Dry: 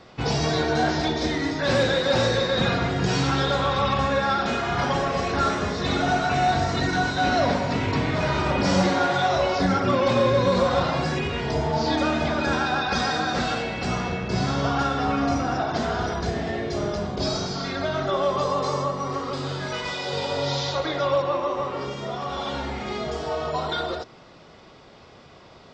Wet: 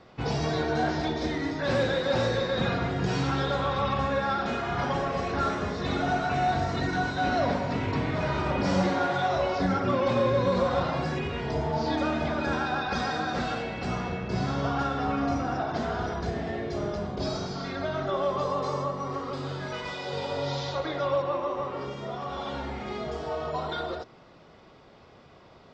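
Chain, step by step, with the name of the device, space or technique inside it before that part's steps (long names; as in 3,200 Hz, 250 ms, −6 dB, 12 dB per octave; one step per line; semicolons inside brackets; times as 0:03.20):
behind a face mask (high-shelf EQ 3,400 Hz −7.5 dB)
level −4 dB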